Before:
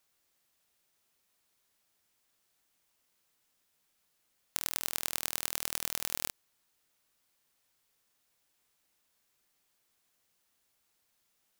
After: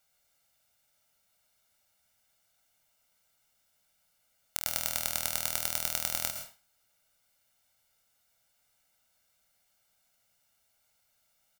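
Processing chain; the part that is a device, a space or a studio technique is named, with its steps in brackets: microphone above a desk (comb 1.4 ms, depth 70%; reverb RT60 0.35 s, pre-delay 0.106 s, DRR 5.5 dB)

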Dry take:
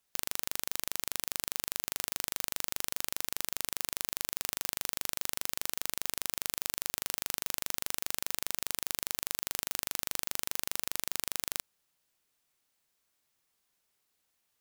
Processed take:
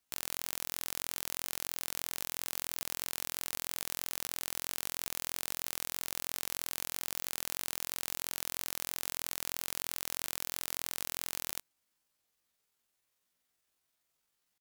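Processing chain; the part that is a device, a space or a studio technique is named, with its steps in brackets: chipmunk voice (pitch shift +9 st)

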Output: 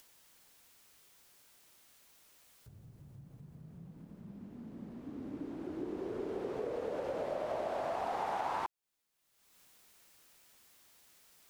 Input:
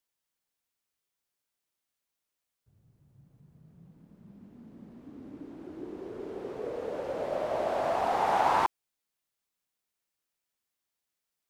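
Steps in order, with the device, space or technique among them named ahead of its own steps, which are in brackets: upward and downward compression (upward compressor, threshold -49 dBFS; compressor 5:1, threshold -37 dBFS, peak gain reduction 15 dB); gain +2.5 dB

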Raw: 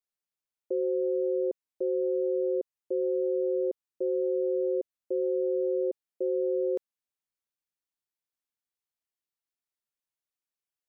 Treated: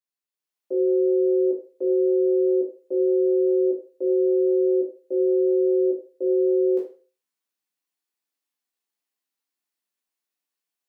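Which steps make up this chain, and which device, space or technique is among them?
far laptop microphone (reverb RT60 0.35 s, pre-delay 10 ms, DRR -4 dB; HPF 190 Hz 24 dB/oct; AGC gain up to 7 dB); gain -6.5 dB

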